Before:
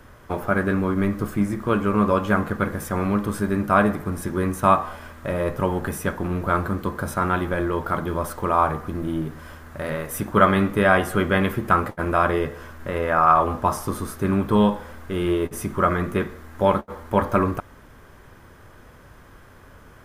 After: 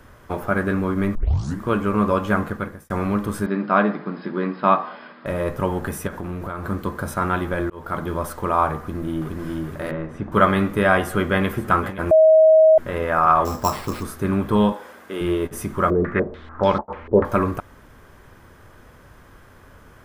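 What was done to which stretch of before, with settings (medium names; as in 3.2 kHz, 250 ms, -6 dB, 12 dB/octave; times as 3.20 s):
1.15 s: tape start 0.47 s
2.44–2.90 s: fade out
3.46–5.26 s: brick-wall FIR band-pass 150–5200 Hz
6.07–6.69 s: compression 12:1, threshold -25 dBFS
7.70–8.12 s: fade in equal-power
8.79–9.33 s: echo throw 420 ms, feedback 50%, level -2 dB
9.91–10.32 s: tape spacing loss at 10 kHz 33 dB
11.01–11.49 s: echo throw 520 ms, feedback 70%, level -14 dB
12.11–12.78 s: bleep 634 Hz -8.5 dBFS
13.45–14.03 s: sample-rate reducer 6.5 kHz
14.72–15.21 s: high-pass 300 Hz
15.90–17.25 s: step-sequenced low-pass 6.8 Hz 430–5100 Hz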